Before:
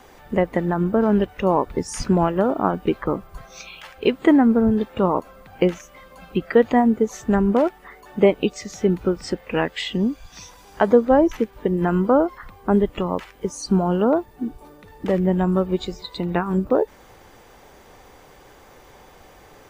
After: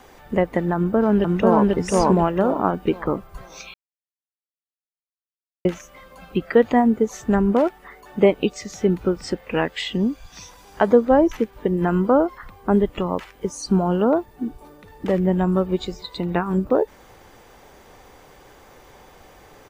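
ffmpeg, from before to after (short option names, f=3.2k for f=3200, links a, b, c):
-filter_complex "[0:a]asplit=2[a][b];[b]afade=t=in:st=0.75:d=0.01,afade=t=out:st=1.72:d=0.01,aecho=0:1:490|980|1470|1960:1|0.3|0.09|0.027[c];[a][c]amix=inputs=2:normalize=0,asplit=3[d][e][f];[d]atrim=end=3.74,asetpts=PTS-STARTPTS,afade=t=out:st=3.736:d=0.004:c=hsin[g];[e]atrim=start=3.74:end=5.65,asetpts=PTS-STARTPTS,volume=0[h];[f]atrim=start=5.65,asetpts=PTS-STARTPTS,afade=t=in:d=0.004:c=hsin[i];[g][h][i]concat=n=3:v=0:a=1"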